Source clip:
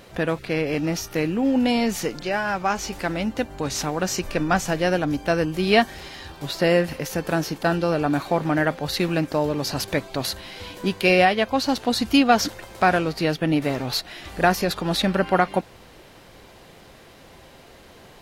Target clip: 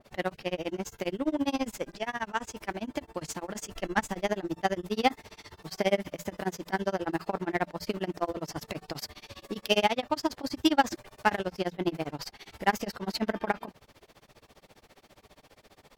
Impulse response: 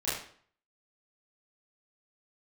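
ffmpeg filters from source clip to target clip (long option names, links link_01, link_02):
-filter_complex "[0:a]bandreject=frequency=50:width_type=h:width=6,bandreject=frequency=100:width_type=h:width=6,bandreject=frequency=150:width_type=h:width=6,tremolo=f=13:d=0.98,asplit=2[link_01][link_02];[link_02]acrusher=bits=2:mix=0:aa=0.5,volume=-10dB[link_03];[link_01][link_03]amix=inputs=2:normalize=0,asetrate=50274,aresample=44100,adynamicequalizer=threshold=0.0112:dfrequency=1900:dqfactor=0.7:tfrequency=1900:tqfactor=0.7:attack=5:release=100:ratio=0.375:range=2:mode=cutabove:tftype=highshelf,volume=-6dB"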